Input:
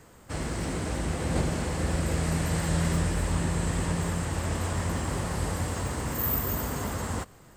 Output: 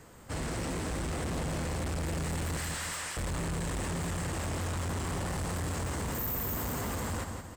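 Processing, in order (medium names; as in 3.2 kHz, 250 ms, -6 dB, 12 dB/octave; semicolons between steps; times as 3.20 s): 2.57–3.17 s: high-pass 1.2 kHz 12 dB/octave; feedback delay 173 ms, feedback 43%, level -9 dB; overload inside the chain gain 31.5 dB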